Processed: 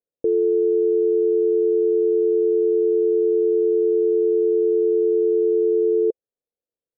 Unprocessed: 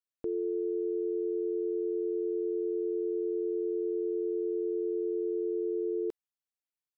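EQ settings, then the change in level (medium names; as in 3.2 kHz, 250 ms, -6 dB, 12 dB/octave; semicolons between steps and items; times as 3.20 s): resonant low-pass 500 Hz, resonance Q 4.9; +4.5 dB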